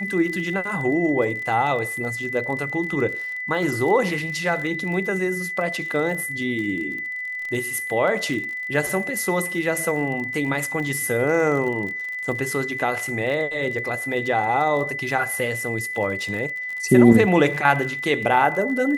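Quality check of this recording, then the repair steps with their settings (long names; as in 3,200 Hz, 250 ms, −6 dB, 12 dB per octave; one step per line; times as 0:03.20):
surface crackle 35 per second −30 dBFS
whistle 2,000 Hz −27 dBFS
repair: click removal
notch filter 2,000 Hz, Q 30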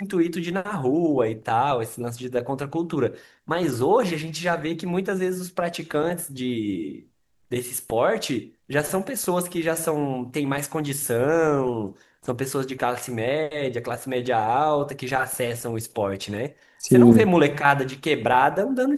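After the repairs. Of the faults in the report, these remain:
none of them is left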